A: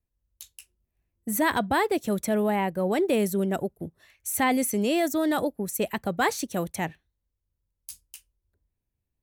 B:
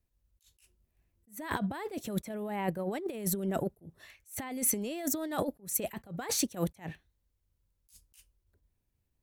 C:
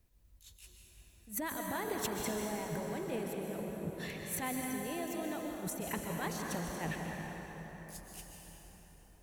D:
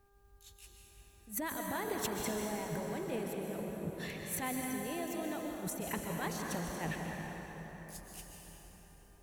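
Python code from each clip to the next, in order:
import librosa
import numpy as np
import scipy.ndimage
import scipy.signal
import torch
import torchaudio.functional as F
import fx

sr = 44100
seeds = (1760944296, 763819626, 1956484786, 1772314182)

y1 = fx.over_compress(x, sr, threshold_db=-29.0, ratio=-0.5)
y1 = fx.attack_slew(y1, sr, db_per_s=220.0)
y1 = y1 * 10.0 ** (-1.5 / 20.0)
y2 = fx.over_compress(y1, sr, threshold_db=-43.0, ratio=-1.0)
y2 = fx.rev_plate(y2, sr, seeds[0], rt60_s=4.9, hf_ratio=0.6, predelay_ms=115, drr_db=-0.5)
y2 = y2 * 10.0 ** (1.0 / 20.0)
y3 = fx.dmg_buzz(y2, sr, base_hz=400.0, harmonics=4, level_db=-71.0, tilt_db=-4, odd_only=False)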